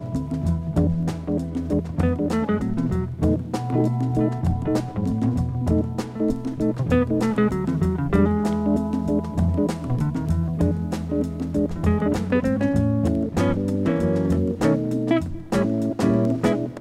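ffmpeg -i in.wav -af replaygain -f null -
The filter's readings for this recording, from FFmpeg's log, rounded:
track_gain = +4.6 dB
track_peak = 0.324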